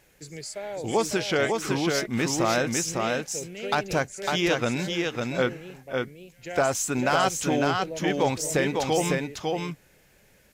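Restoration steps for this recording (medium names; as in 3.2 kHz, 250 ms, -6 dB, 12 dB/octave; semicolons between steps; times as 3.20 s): clip repair -13.5 dBFS; expander -46 dBFS, range -21 dB; inverse comb 552 ms -3.5 dB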